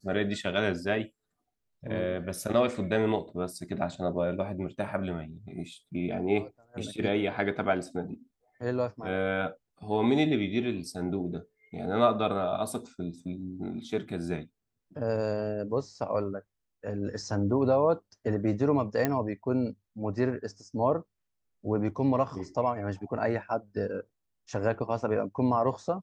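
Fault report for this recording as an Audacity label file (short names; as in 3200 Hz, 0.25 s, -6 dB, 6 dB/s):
19.050000	19.050000	pop -12 dBFS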